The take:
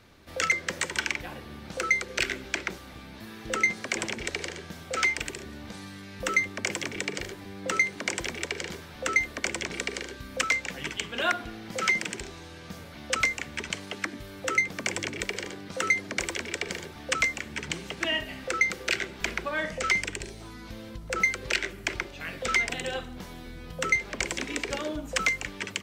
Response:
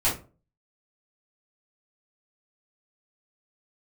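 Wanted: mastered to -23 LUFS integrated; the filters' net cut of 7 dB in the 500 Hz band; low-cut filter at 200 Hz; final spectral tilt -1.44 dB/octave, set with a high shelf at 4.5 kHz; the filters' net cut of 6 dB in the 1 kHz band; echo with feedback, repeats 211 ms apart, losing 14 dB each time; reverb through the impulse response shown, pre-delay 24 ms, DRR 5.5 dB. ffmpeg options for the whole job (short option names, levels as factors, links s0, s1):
-filter_complex "[0:a]highpass=200,equalizer=f=500:t=o:g=-6.5,equalizer=f=1000:t=o:g=-7.5,highshelf=f=4500:g=-5,aecho=1:1:211|422:0.2|0.0399,asplit=2[s0][s1];[1:a]atrim=start_sample=2205,adelay=24[s2];[s1][s2]afir=irnorm=-1:irlink=0,volume=0.133[s3];[s0][s3]amix=inputs=2:normalize=0,volume=2.37"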